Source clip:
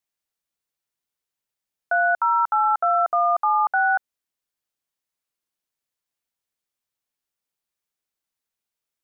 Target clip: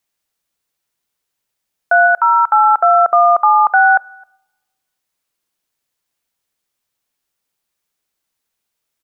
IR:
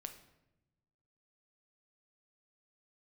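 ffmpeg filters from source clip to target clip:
-filter_complex "[0:a]asplit=3[link_01][link_02][link_03];[link_01]afade=type=out:start_time=2.06:duration=0.02[link_04];[link_02]lowshelf=frequency=400:gain=-11.5,afade=type=in:start_time=2.06:duration=0.02,afade=type=out:start_time=2.46:duration=0.02[link_05];[link_03]afade=type=in:start_time=2.46:duration=0.02[link_06];[link_04][link_05][link_06]amix=inputs=3:normalize=0,asplit=2[link_07][link_08];[link_08]adelay=262.4,volume=-29dB,highshelf=frequency=4000:gain=-5.9[link_09];[link_07][link_09]amix=inputs=2:normalize=0,asplit=2[link_10][link_11];[1:a]atrim=start_sample=2205[link_12];[link_11][link_12]afir=irnorm=-1:irlink=0,volume=-11.5dB[link_13];[link_10][link_13]amix=inputs=2:normalize=0,volume=8.5dB"

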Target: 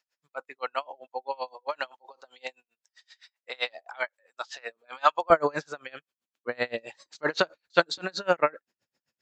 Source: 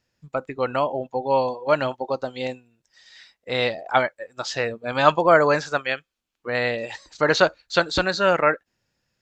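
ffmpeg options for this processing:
ffmpeg -i in.wav -af "asetnsamples=nb_out_samples=441:pad=0,asendcmd='5.3 highpass f 180',highpass=800,aeval=exprs='val(0)*pow(10,-32*(0.5-0.5*cos(2*PI*7.7*n/s))/20)':channel_layout=same" out.wav

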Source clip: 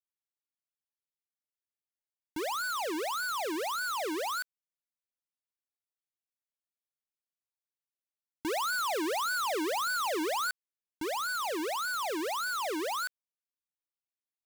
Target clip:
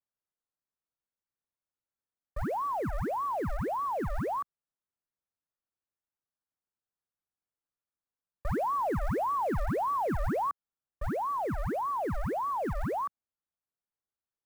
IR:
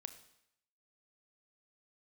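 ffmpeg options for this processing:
-af "highpass=frequency=180:width_type=q:width=0.5412,highpass=frequency=180:width_type=q:width=1.307,lowpass=frequency=2000:width_type=q:width=0.5176,lowpass=frequency=2000:width_type=q:width=0.7071,lowpass=frequency=2000:width_type=q:width=1.932,afreqshift=-350,acrusher=bits=7:mode=log:mix=0:aa=0.000001,volume=2.5dB"

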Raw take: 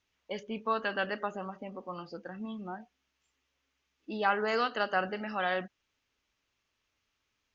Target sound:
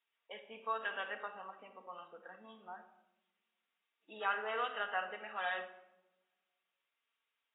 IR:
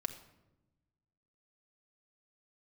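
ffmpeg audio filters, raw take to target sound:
-filter_complex "[0:a]highpass=650[link_01];[1:a]atrim=start_sample=2205[link_02];[link_01][link_02]afir=irnorm=-1:irlink=0,volume=-5.5dB" -ar 16000 -c:a aac -b:a 16k

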